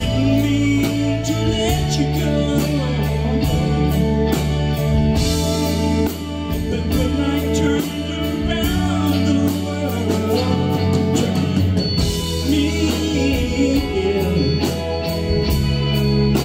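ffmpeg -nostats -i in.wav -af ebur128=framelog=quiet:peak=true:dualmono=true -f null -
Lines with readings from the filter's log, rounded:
Integrated loudness:
  I:         -15.6 LUFS
  Threshold: -25.6 LUFS
Loudness range:
  LRA:         1.0 LU
  Threshold: -35.7 LUFS
  LRA low:   -16.2 LUFS
  LRA high:  -15.2 LUFS
True peak:
  Peak:       -5.0 dBFS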